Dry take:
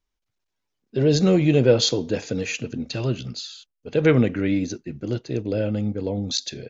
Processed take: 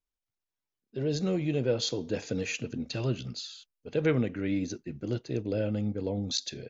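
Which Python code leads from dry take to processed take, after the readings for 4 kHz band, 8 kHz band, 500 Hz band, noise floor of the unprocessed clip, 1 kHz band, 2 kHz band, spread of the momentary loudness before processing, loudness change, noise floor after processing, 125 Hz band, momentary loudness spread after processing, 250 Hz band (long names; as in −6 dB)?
−8.5 dB, can't be measured, −9.5 dB, −80 dBFS, −9.0 dB, −8.0 dB, 14 LU, −9.0 dB, below −85 dBFS, −9.0 dB, 9 LU, −9.0 dB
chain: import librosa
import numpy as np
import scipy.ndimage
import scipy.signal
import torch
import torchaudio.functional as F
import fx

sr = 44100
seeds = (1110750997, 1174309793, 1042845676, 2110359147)

y = fx.rider(x, sr, range_db=3, speed_s=0.5)
y = y * librosa.db_to_amplitude(-8.5)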